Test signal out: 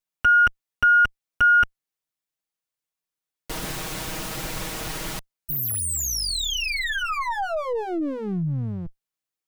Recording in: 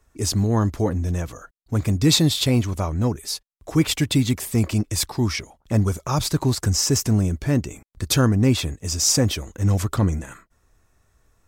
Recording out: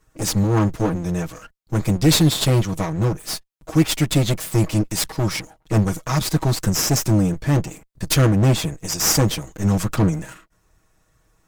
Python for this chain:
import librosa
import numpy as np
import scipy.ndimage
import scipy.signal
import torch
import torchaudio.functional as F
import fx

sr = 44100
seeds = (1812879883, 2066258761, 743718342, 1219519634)

y = fx.lower_of_two(x, sr, delay_ms=6.3)
y = y * 10.0 ** (2.5 / 20.0)